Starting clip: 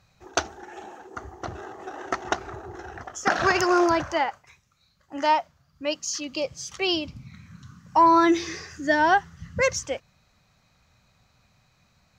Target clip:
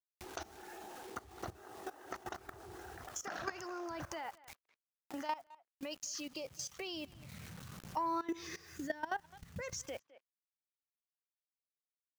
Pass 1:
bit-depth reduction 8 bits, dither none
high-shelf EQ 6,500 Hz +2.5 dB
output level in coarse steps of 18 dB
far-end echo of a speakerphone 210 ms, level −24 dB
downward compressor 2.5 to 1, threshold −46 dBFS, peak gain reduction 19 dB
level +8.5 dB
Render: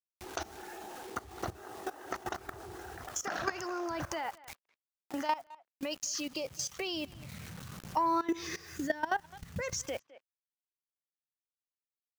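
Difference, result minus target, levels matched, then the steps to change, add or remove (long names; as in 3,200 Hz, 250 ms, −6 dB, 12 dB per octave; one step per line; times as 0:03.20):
downward compressor: peak gain reduction −6.5 dB
change: downward compressor 2.5 to 1, threshold −57 dBFS, peak gain reduction 26 dB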